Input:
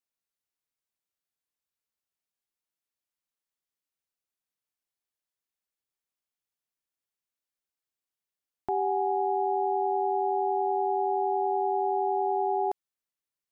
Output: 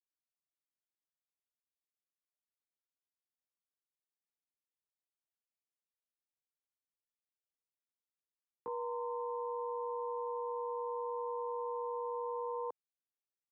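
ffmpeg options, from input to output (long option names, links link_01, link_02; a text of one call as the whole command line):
ffmpeg -i in.wav -af "bandpass=frequency=310:width_type=q:width=0.72:csg=0,asetrate=55563,aresample=44100,atempo=0.793701,afreqshift=-13,volume=-8.5dB" out.wav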